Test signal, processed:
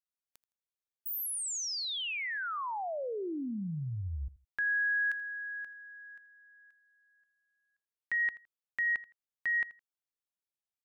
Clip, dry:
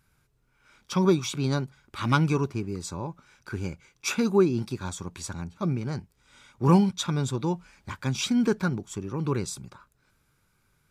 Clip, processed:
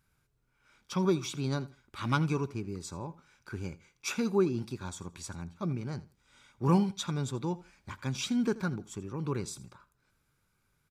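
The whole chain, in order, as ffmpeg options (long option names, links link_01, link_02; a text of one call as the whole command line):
ffmpeg -i in.wav -af "aecho=1:1:82|164:0.112|0.0258,volume=-6dB" out.wav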